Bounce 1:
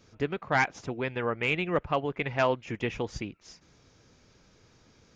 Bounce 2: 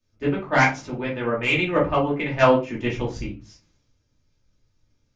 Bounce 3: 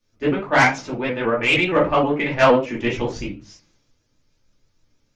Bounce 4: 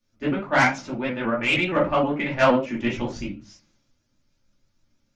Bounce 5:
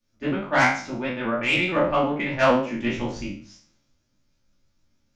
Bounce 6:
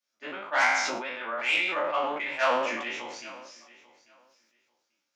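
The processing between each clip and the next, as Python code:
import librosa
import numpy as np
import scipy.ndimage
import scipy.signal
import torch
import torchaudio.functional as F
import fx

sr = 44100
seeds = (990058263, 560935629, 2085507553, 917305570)

y1 = fx.room_shoebox(x, sr, seeds[0], volume_m3=190.0, walls='furnished', distance_m=2.6)
y1 = fx.band_widen(y1, sr, depth_pct=70)
y2 = fx.peak_eq(y1, sr, hz=65.0, db=-8.5, octaves=2.4)
y2 = 10.0 ** (-11.5 / 20.0) * np.tanh(y2 / 10.0 ** (-11.5 / 20.0))
y2 = fx.vibrato_shape(y2, sr, shape='saw_up', rate_hz=6.4, depth_cents=100.0)
y2 = y2 * 10.0 ** (5.0 / 20.0)
y3 = fx.peak_eq(y2, sr, hz=470.0, db=-10.5, octaves=0.23)
y3 = fx.small_body(y3, sr, hz=(220.0, 540.0, 1400.0), ring_ms=45, db=6)
y3 = y3 * 10.0 ** (-4.0 / 20.0)
y4 = fx.spec_trails(y3, sr, decay_s=0.45)
y4 = y4 * 10.0 ** (-2.0 / 20.0)
y5 = scipy.signal.sosfilt(scipy.signal.butter(2, 720.0, 'highpass', fs=sr, output='sos'), y4)
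y5 = fx.echo_feedback(y5, sr, ms=841, feedback_pct=16, wet_db=-20.5)
y5 = fx.sustainer(y5, sr, db_per_s=37.0)
y5 = y5 * 10.0 ** (-3.5 / 20.0)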